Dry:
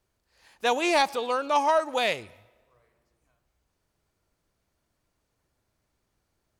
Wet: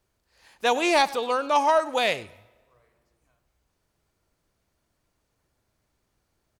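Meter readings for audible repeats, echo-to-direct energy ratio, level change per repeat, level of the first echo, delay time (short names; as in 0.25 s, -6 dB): 1, -20.0 dB, no steady repeat, -20.0 dB, 98 ms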